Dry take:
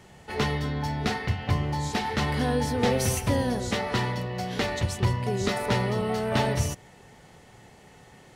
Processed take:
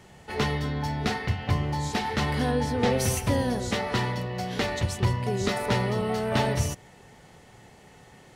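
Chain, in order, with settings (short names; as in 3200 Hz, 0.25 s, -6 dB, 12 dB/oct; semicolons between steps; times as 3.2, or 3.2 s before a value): 2.5–2.97 high shelf 6500 Hz -> 9500 Hz -9 dB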